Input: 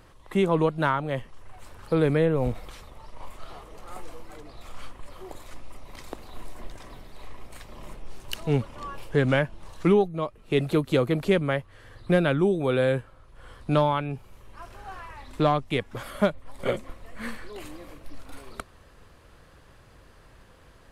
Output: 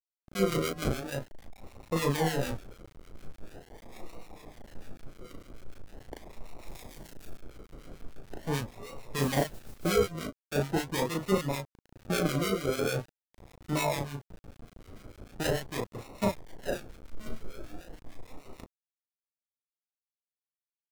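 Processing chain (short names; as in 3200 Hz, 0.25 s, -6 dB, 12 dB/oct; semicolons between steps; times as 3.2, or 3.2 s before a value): low-pass opened by the level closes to 360 Hz, open at -23 dBFS; bit-crush 7-bit; 17.04–18.03 low shelf 73 Hz +8.5 dB; decimation with a swept rate 39×, swing 60% 0.42 Hz; 6.66–7.32 high shelf 2800 Hz -> 5600 Hz +11.5 dB; doubler 36 ms -2 dB; harmonic tremolo 6.7 Hz, depth 70%, crossover 1300 Hz; 9.18–9.92 modulation noise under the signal 16 dB; wow and flutter 27 cents; gain -5.5 dB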